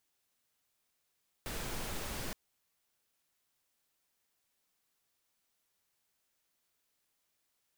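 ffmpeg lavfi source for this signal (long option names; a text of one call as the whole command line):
ffmpeg -f lavfi -i "anoisesrc=color=pink:amplitude=0.0543:duration=0.87:sample_rate=44100:seed=1" out.wav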